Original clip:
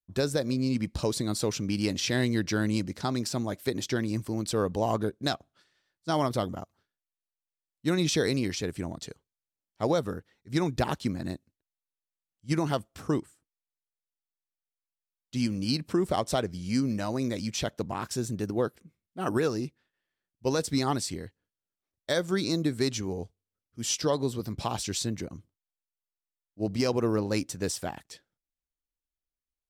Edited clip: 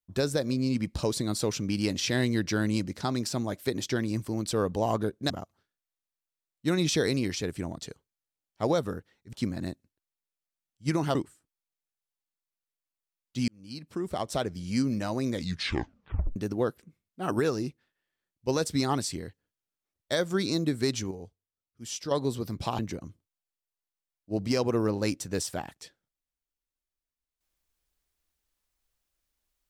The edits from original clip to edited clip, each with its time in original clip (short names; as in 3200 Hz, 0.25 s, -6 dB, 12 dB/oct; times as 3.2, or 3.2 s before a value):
5.3–6.5 cut
10.53–10.96 cut
12.78–13.13 cut
15.46–16.62 fade in
17.3 tape stop 1.04 s
23.09–24.09 gain -7.5 dB
24.77–25.08 cut